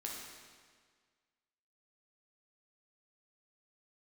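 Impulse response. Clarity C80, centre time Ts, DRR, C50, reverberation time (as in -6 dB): 2.5 dB, 86 ms, -2.5 dB, 0.5 dB, 1.7 s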